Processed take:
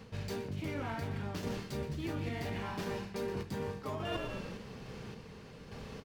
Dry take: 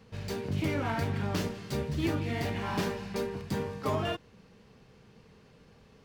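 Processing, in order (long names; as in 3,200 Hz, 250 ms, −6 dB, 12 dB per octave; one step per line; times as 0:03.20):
echo with shifted repeats 122 ms, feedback 43%, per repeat −40 Hz, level −17 dB
sample-and-hold tremolo 3.5 Hz, depth 55%
reversed playback
downward compressor 10 to 1, threshold −48 dBFS, peak gain reduction 21.5 dB
reversed playback
level +13 dB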